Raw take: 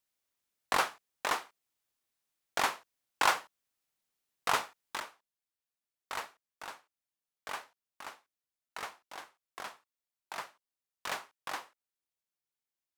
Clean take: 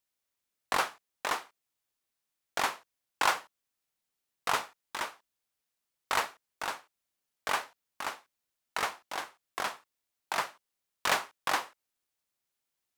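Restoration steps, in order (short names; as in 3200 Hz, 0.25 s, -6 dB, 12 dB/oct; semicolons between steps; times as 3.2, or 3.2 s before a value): gain correction +9.5 dB, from 5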